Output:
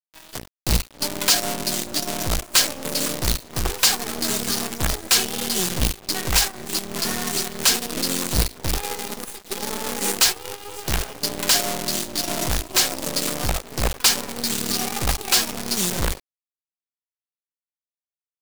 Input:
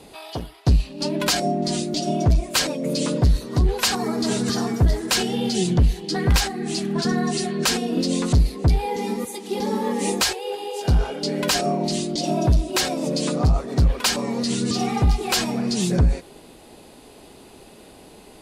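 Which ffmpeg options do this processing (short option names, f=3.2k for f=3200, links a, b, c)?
-af "equalizer=f=140:w=0.36:g=-4.5,acrusher=bits=2:mode=log:mix=0:aa=0.000001,highshelf=f=3.8k:g=6.5,aeval=exprs='sgn(val(0))*max(abs(val(0))-0.0126,0)':c=same,acrusher=bits=4:dc=4:mix=0:aa=0.000001"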